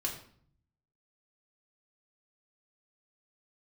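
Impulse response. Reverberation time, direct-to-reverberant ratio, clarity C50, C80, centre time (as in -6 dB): 0.55 s, -1.5 dB, 8.0 dB, 10.5 dB, 23 ms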